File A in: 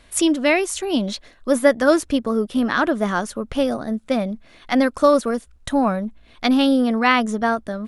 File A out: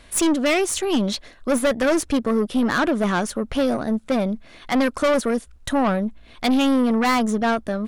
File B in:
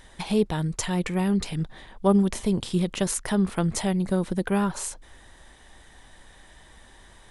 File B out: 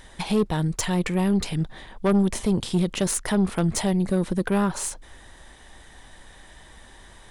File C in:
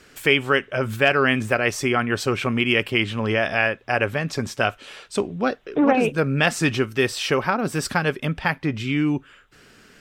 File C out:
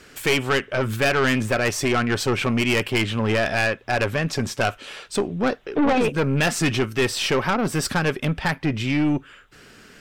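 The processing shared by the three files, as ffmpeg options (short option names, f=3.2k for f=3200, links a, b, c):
-af "aeval=exprs='(tanh(8.91*val(0)+0.3)-tanh(0.3))/8.91':c=same,volume=4dB"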